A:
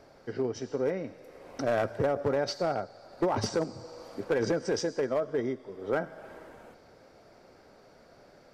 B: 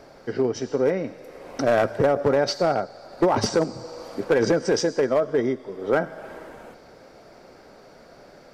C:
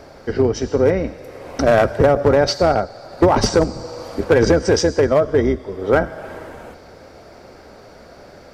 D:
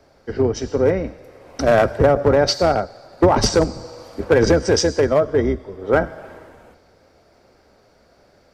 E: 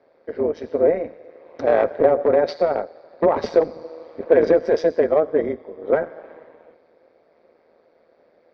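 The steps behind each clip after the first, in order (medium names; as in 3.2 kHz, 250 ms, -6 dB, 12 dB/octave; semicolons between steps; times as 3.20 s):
peaking EQ 94 Hz -7 dB 0.44 oct; trim +8 dB
octave divider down 2 oct, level -4 dB; trim +6 dB
three bands expanded up and down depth 40%; trim -1.5 dB
cabinet simulation 300–3300 Hz, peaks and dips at 330 Hz -3 dB, 500 Hz +7 dB, 780 Hz -5 dB, 1.4 kHz -7 dB, 2.9 kHz -10 dB; AM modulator 160 Hz, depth 50%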